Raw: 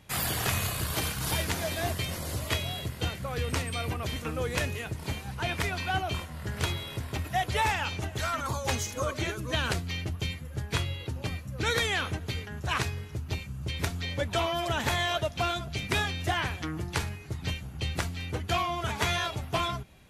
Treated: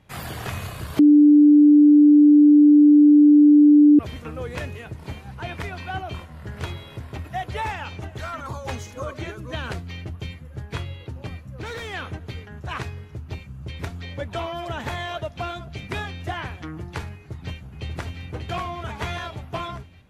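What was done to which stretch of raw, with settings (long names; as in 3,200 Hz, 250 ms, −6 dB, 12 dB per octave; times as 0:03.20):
0:00.99–0:03.99: beep over 295 Hz −8.5 dBFS
0:11.44–0:11.94: hard clipping −28.5 dBFS
0:17.13–0:18.24: delay throw 590 ms, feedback 55%, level −4.5 dB
whole clip: high-shelf EQ 3,400 Hz −11.5 dB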